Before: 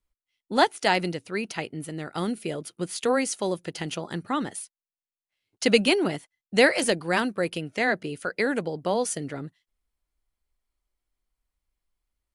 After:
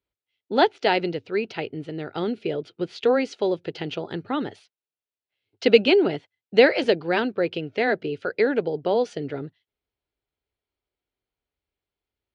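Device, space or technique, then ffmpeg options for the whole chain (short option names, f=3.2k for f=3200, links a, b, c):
guitar cabinet: -af "highpass=98,equalizer=f=100:t=q:w=4:g=8,equalizer=f=190:t=q:w=4:g=-6,equalizer=f=420:t=q:w=4:g=7,equalizer=f=1.1k:t=q:w=4:g=-7,equalizer=f=1.9k:t=q:w=4:g=-4,lowpass=f=4.1k:w=0.5412,lowpass=f=4.1k:w=1.3066,volume=2dB"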